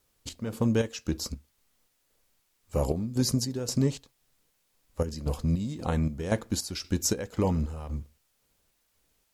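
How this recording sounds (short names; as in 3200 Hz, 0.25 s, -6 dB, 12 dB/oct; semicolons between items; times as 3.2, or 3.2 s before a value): chopped level 1.9 Hz, depth 65%, duty 55%; a quantiser's noise floor 12-bit, dither triangular; MP3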